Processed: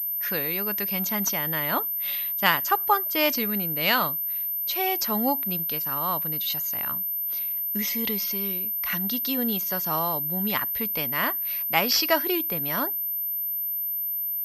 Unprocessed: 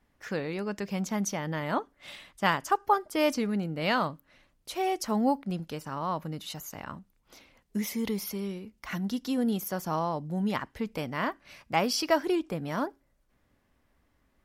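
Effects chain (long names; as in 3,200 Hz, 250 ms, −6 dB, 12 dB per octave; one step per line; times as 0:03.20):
tilt shelving filter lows −6.5 dB, about 1,500 Hz
in parallel at −8.5 dB: floating-point word with a short mantissa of 2 bits
on the sum: switching amplifier with a slow clock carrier 13,000 Hz
level +2.5 dB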